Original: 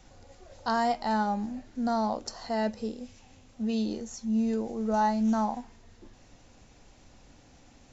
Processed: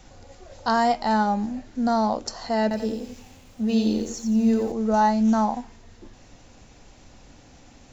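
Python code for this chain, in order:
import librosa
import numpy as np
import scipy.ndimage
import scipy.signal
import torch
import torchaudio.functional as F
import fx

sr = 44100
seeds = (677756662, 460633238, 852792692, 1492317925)

y = fx.echo_crushed(x, sr, ms=88, feedback_pct=35, bits=10, wet_db=-5.0, at=(2.62, 4.72))
y = F.gain(torch.from_numpy(y), 6.0).numpy()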